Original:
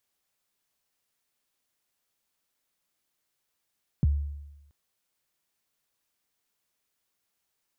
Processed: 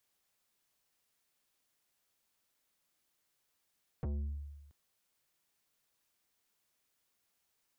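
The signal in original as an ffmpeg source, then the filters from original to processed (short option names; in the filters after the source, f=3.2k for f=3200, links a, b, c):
-f lavfi -i "aevalsrc='0.141*pow(10,-3*t/1)*sin(2*PI*(200*0.024/log(72/200)*(exp(log(72/200)*min(t,0.024)/0.024)-1)+72*max(t-0.024,0)))':d=0.68:s=44100"
-filter_complex "[0:a]acrossover=split=210[a][b];[b]alimiter=level_in=12dB:limit=-24dB:level=0:latency=1,volume=-12dB[c];[a][c]amix=inputs=2:normalize=0,asoftclip=type=tanh:threshold=-35dB"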